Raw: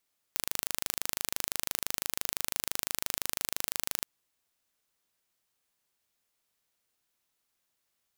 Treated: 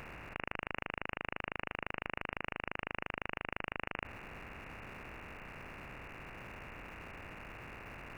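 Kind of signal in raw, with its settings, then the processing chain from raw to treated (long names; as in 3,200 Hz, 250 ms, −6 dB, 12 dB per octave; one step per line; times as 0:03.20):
impulse train 25.9 per second, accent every 0, −3 dBFS 3.69 s
compressor on every frequency bin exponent 0.2
voice inversion scrambler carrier 2,800 Hz
in parallel at −9 dB: comparator with hysteresis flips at −45.5 dBFS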